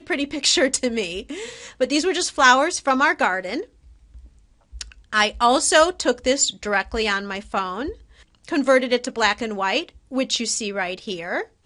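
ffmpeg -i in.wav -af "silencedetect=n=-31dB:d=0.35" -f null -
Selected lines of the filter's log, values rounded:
silence_start: 3.63
silence_end: 4.75 | silence_duration: 1.12
silence_start: 7.93
silence_end: 8.48 | silence_duration: 0.55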